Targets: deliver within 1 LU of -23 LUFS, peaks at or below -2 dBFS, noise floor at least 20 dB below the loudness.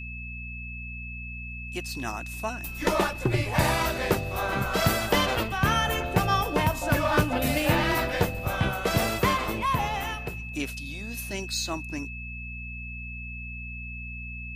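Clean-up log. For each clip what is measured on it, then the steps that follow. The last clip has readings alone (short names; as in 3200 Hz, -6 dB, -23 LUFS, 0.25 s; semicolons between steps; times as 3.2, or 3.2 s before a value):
hum 60 Hz; harmonics up to 240 Hz; hum level -37 dBFS; steady tone 2600 Hz; tone level -38 dBFS; loudness -27.5 LUFS; peak -7.5 dBFS; loudness target -23.0 LUFS
-> de-hum 60 Hz, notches 4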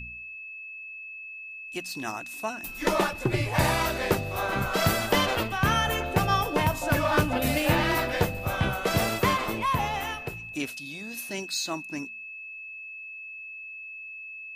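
hum none; steady tone 2600 Hz; tone level -38 dBFS
-> notch 2600 Hz, Q 30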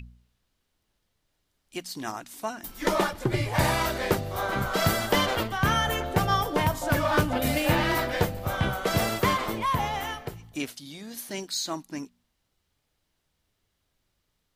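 steady tone none; loudness -27.0 LUFS; peak -8.5 dBFS; loudness target -23.0 LUFS
-> gain +4 dB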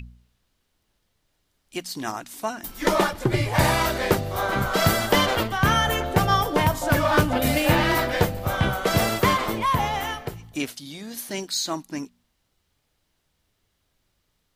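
loudness -23.0 LUFS; peak -4.5 dBFS; noise floor -73 dBFS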